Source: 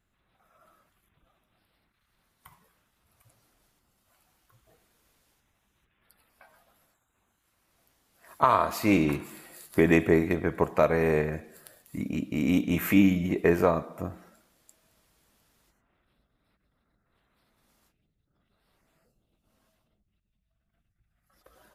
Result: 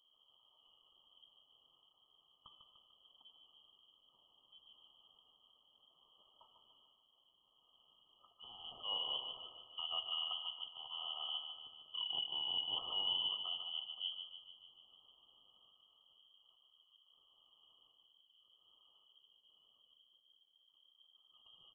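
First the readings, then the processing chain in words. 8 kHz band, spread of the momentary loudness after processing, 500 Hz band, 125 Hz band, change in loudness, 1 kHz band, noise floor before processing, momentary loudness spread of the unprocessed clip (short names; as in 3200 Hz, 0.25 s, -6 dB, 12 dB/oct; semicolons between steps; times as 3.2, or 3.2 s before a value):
under -30 dB, 15 LU, -34.0 dB, under -40 dB, -14.5 dB, -22.0 dB, -77 dBFS, 16 LU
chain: notches 50/100/150/200 Hz; reverse; compressor 16:1, threshold -29 dBFS, peak gain reduction 15.5 dB; reverse; brick-wall FIR band-stop 340–1900 Hz; on a send: feedback echo 0.148 s, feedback 54%, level -7.5 dB; on the sum: inverted band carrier 3200 Hz; mismatched tape noise reduction encoder only; gain -6 dB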